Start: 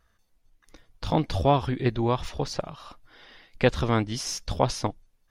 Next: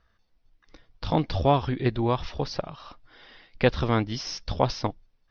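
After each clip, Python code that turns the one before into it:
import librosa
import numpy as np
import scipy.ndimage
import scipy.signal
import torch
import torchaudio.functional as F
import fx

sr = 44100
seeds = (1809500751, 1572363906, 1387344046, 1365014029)

y = scipy.signal.sosfilt(scipy.signal.butter(12, 5700.0, 'lowpass', fs=sr, output='sos'), x)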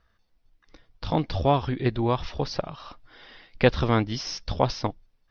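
y = fx.rider(x, sr, range_db=3, speed_s=2.0)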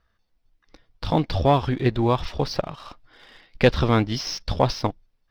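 y = fx.leveller(x, sr, passes=1)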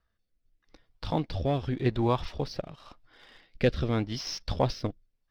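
y = fx.rotary(x, sr, hz=0.85)
y = y * 10.0 ** (-5.0 / 20.0)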